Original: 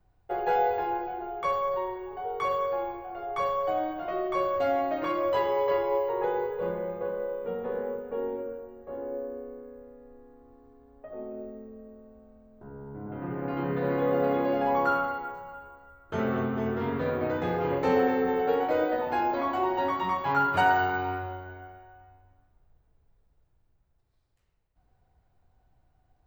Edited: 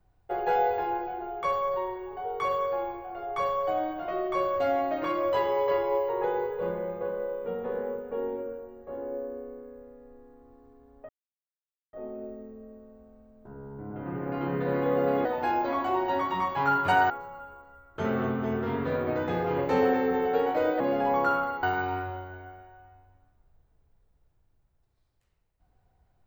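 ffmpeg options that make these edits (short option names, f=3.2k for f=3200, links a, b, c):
-filter_complex "[0:a]asplit=6[a][b][c][d][e][f];[a]atrim=end=11.09,asetpts=PTS-STARTPTS,afade=t=out:st=11.086:d=0.004:c=hsin,apad=pad_dur=0.84[g];[b]atrim=start=11.09:end=14.412,asetpts=PTS-STARTPTS,afade=t=in:d=0.004:c=hsin[h];[c]atrim=start=18.938:end=20.792[i];[d]atrim=start=15.238:end=18.942[j];[e]atrim=start=14.408:end=15.242[k];[f]atrim=start=20.788[l];[g][h]concat=n=2:v=0:a=1[m];[m][i]acrossfade=d=0.004:c1=hsin:c2=hsin[n];[n][j]acrossfade=d=0.004:c1=hsin:c2=hsin[o];[o][k]acrossfade=d=0.004:c1=hsin:c2=hsin[p];[p][l]acrossfade=d=0.004:c1=hsin:c2=hsin"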